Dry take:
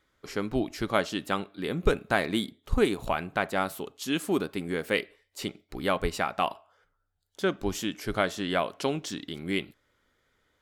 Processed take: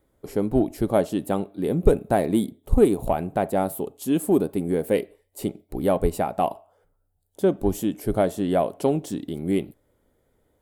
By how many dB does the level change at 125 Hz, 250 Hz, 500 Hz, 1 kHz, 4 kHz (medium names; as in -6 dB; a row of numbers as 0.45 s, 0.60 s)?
+7.5 dB, +7.5 dB, +7.5 dB, +3.0 dB, -8.0 dB